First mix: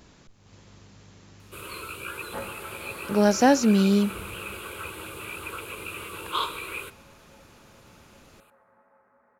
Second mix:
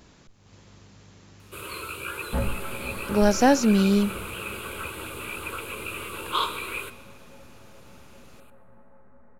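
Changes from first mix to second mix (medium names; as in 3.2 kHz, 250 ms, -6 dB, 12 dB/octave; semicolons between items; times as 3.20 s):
first sound: send +9.0 dB; second sound: remove band-pass filter 1.5 kHz, Q 0.63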